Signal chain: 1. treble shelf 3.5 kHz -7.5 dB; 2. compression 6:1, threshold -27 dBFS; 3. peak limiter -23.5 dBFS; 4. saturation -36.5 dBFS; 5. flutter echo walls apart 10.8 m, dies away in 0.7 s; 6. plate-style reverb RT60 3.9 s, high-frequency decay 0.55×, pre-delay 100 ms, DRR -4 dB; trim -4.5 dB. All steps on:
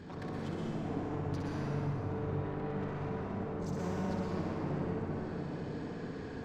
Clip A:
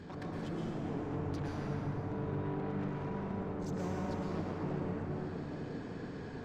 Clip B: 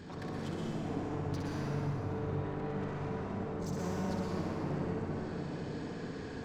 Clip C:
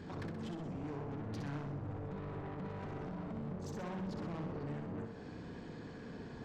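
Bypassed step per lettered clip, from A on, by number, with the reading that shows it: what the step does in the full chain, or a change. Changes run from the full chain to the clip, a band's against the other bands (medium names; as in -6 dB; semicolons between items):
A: 5, echo-to-direct 6.0 dB to 4.0 dB; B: 1, 4 kHz band +3.0 dB; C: 6, echo-to-direct 6.0 dB to -4.0 dB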